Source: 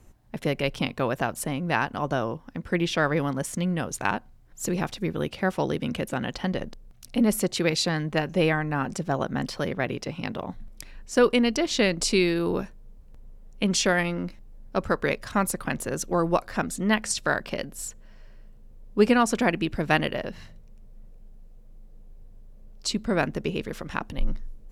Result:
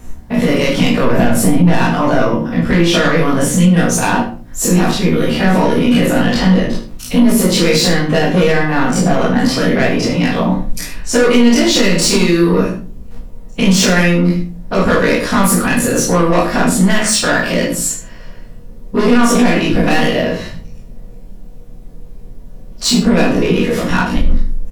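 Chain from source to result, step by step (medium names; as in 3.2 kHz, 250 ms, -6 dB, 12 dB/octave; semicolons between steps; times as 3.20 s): every event in the spectrogram widened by 60 ms; 1.04–1.77 s: bass shelf 450 Hz +10 dB; in parallel at -2.5 dB: compression, threshold -29 dBFS, peak gain reduction 16.5 dB; on the sum: saturation -17 dBFS, distortion -10 dB; doubling 17 ms -7 dB; delay 75 ms -12 dB; simulated room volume 230 m³, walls furnished, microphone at 1.8 m; loudness maximiser +7.5 dB; trim -1 dB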